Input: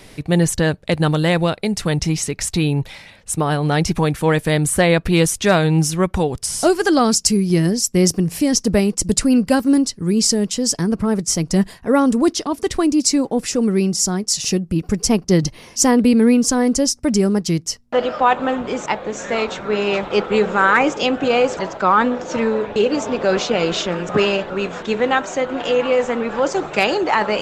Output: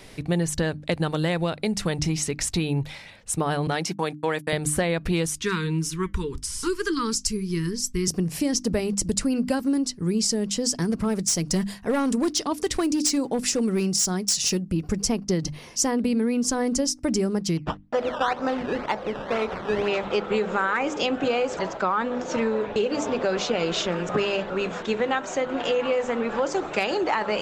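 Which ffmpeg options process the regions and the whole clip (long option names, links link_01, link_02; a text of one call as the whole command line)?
ffmpeg -i in.wav -filter_complex "[0:a]asettb=1/sr,asplit=3[link_01][link_02][link_03];[link_01]atrim=end=3.674[link_04];[link_02]atrim=start=3.67:end=4.53,asetpts=PTS-STARTPTS,afade=type=in:duration=0.004:curve=qsin,afade=type=out:start_time=0.856:duration=0.004:curve=qsin,highpass=frequency=160:width=0.5412,highpass=frequency=160:width=1.3066,lowshelf=frequency=350:gain=-8,agate=range=-57dB:threshold=-28dB:ratio=16:release=100:detection=peak[link_05];[link_03]atrim=start=4.526[link_06];[link_04][link_05]acrossfade=duration=0.004:curve1=hsin:curve2=qsin[link_07];[link_07][link_06]acrossfade=duration=0.004:curve1=qsin:curve2=hsin,asettb=1/sr,asplit=3[link_08][link_09][link_10];[link_08]atrim=end=5.354[link_11];[link_09]atrim=start=5.35:end=8.08,asetpts=PTS-STARTPTS,afade=type=in:duration=0.004:curve=qsin,afade=type=out:start_time=2.726:duration=0.004:curve=qsin,asubboost=boost=10.5:cutoff=70,flanger=delay=3.6:depth=1.4:regen=-79:speed=1.9:shape=triangular,asuperstop=centerf=650:order=12:qfactor=1.4[link_12];[link_10]atrim=start=8.076[link_13];[link_11][link_12]acrossfade=duration=0.004:curve1=hsin:curve2=qsin[link_14];[link_14][link_13]acrossfade=duration=0.004:curve1=qsin:curve2=hsin,asettb=1/sr,asplit=3[link_15][link_16][link_17];[link_15]atrim=end=10.814[link_18];[link_16]atrim=start=10.81:end=14.62,asetpts=PTS-STARTPTS,afade=type=in:duration=0.004:curve=qsin,afade=type=out:start_time=3.806:duration=0.004:curve=qsin,highshelf=frequency=2600:gain=6,volume=10.5dB,asoftclip=hard,volume=-10.5dB[link_19];[link_17]atrim=start=14.616[link_20];[link_18][link_19]acrossfade=duration=0.004:curve1=hsin:curve2=qsin[link_21];[link_21][link_20]acrossfade=duration=0.004:curve1=qsin:curve2=hsin,asettb=1/sr,asplit=3[link_22][link_23][link_24];[link_22]atrim=end=17.574[link_25];[link_23]atrim=start=17.57:end=19.88,asetpts=PTS-STARTPTS,afade=type=in:duration=0.004:curve=qsin,afade=type=out:start_time=2.306:duration=0.004:curve=qsin,acrusher=samples=14:mix=1:aa=0.000001:lfo=1:lforange=14:lforate=2,lowpass=2800[link_26];[link_24]atrim=start=19.876[link_27];[link_25][link_26]acrossfade=duration=0.004:curve1=hsin:curve2=qsin[link_28];[link_28][link_27]acrossfade=duration=0.004:curve1=qsin:curve2=hsin,equalizer=frequency=12000:width=1.5:gain=-3,bandreject=frequency=50:width_type=h:width=6,bandreject=frequency=100:width_type=h:width=6,bandreject=frequency=150:width_type=h:width=6,bandreject=frequency=200:width_type=h:width=6,bandreject=frequency=250:width_type=h:width=6,bandreject=frequency=300:width_type=h:width=6,acompressor=threshold=-17dB:ratio=6,volume=-3dB" out.wav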